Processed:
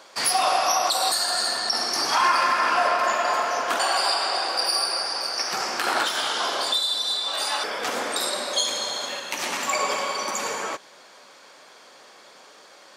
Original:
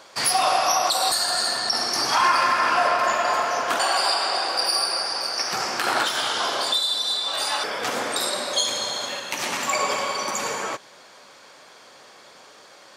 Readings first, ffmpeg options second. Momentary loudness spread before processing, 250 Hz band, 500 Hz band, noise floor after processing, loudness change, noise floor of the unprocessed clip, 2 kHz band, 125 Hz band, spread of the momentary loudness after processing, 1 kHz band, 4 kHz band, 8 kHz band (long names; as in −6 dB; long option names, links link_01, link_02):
7 LU, −2.0 dB, −1.0 dB, −50 dBFS, −1.0 dB, −49 dBFS, −1.0 dB, can't be measured, 7 LU, −1.0 dB, −1.0 dB, −1.0 dB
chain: -af "highpass=180,volume=-1dB"